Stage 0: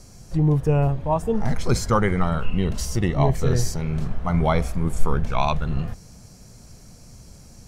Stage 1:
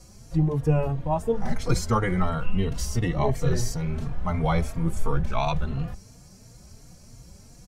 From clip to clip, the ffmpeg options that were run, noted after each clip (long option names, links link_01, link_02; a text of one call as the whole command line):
ffmpeg -i in.wav -filter_complex "[0:a]asplit=2[link_01][link_02];[link_02]adelay=3.7,afreqshift=2.9[link_03];[link_01][link_03]amix=inputs=2:normalize=1" out.wav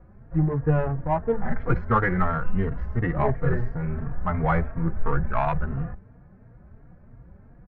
ffmpeg -i in.wav -af "adynamicsmooth=sensitivity=2:basefreq=1200,lowpass=frequency=1700:width_type=q:width=3.2" out.wav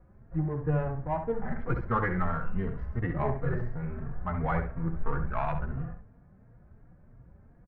ffmpeg -i in.wav -filter_complex "[0:a]asplit=2[link_01][link_02];[link_02]adelay=67,lowpass=frequency=2500:poles=1,volume=-7dB,asplit=2[link_03][link_04];[link_04]adelay=67,lowpass=frequency=2500:poles=1,volume=0.24,asplit=2[link_05][link_06];[link_06]adelay=67,lowpass=frequency=2500:poles=1,volume=0.24[link_07];[link_01][link_03][link_05][link_07]amix=inputs=4:normalize=0,volume=-7dB" out.wav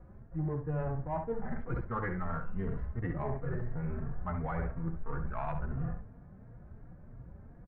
ffmpeg -i in.wav -af "areverse,acompressor=threshold=-35dB:ratio=10,areverse,lowpass=frequency=2200:poles=1,volume=4.5dB" out.wav